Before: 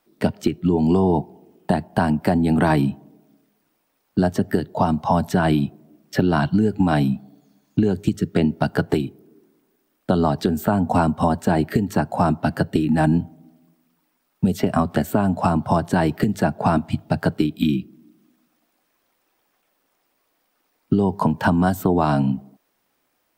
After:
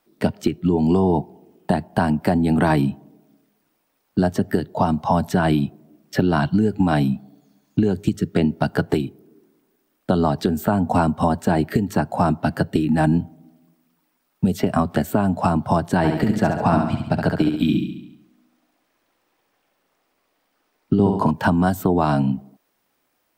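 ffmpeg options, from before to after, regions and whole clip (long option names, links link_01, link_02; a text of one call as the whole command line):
ffmpeg -i in.wav -filter_complex "[0:a]asettb=1/sr,asplit=3[link_01][link_02][link_03];[link_01]atrim=end=15.974[link_04];[link_02]atrim=start=15.97:end=21.31,asetpts=PTS-STARTPTS,afade=type=in:duration=0.004:curve=qsin,afade=type=out:start_time=5.336:duration=0.004:curve=qsin,highshelf=frequency=8000:gain=-8,aecho=1:1:69|138|207|276|345|414|483:0.562|0.309|0.17|0.0936|0.0515|0.0283|0.0156,atrim=end_sample=235494[link_05];[link_03]atrim=start=21.306[link_06];[link_04][link_05]acrossfade=duration=0.004:curve1=hsin:curve2=qsin[link_07];[link_07][link_06]acrossfade=duration=0.004:curve1=qsin:curve2=hsin" out.wav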